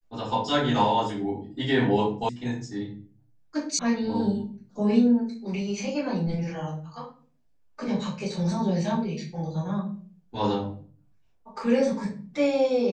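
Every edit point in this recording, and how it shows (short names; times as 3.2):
2.29 sound cut off
3.79 sound cut off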